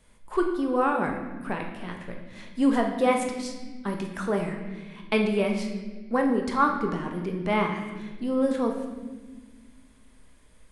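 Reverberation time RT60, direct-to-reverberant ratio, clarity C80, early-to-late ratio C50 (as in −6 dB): 1.4 s, 2.0 dB, 7.0 dB, 5.0 dB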